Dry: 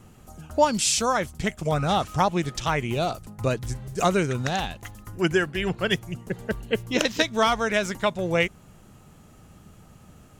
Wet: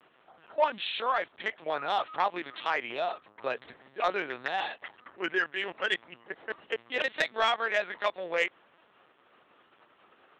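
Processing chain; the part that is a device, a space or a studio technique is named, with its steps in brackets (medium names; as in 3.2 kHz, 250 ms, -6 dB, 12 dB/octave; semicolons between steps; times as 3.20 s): talking toy (LPC vocoder at 8 kHz pitch kept; high-pass 580 Hz 12 dB/octave; peaking EQ 1.8 kHz +4.5 dB 0.36 oct; saturation -12.5 dBFS, distortion -19 dB); trim -2.5 dB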